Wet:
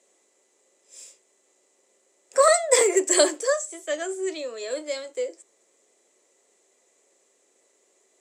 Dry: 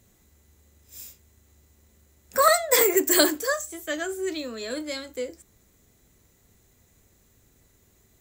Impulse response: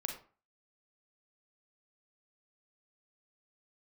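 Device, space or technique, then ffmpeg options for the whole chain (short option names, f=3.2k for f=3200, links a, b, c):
phone speaker on a table: -af "highpass=f=370:w=0.5412,highpass=f=370:w=1.3066,equalizer=f=380:t=q:w=4:g=3,equalizer=f=560:t=q:w=4:g=6,equalizer=f=1.5k:t=q:w=4:g=-6,equalizer=f=3.9k:t=q:w=4:g=-4,equalizer=f=8.2k:t=q:w=4:g=6,lowpass=f=8.9k:w=0.5412,lowpass=f=8.9k:w=1.3066"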